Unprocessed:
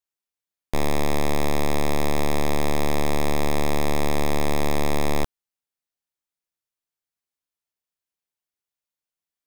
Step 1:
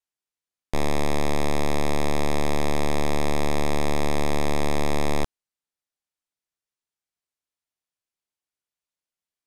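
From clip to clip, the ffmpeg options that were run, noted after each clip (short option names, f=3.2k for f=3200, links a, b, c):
-af "lowpass=11k,volume=-1dB"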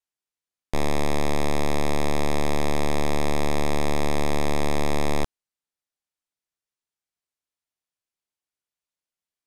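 -af anull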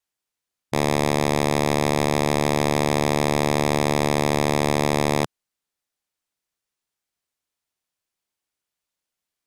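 -af "afftfilt=real='re*lt(hypot(re,im),0.316)':imag='im*lt(hypot(re,im),0.316)':win_size=1024:overlap=0.75,acontrast=60"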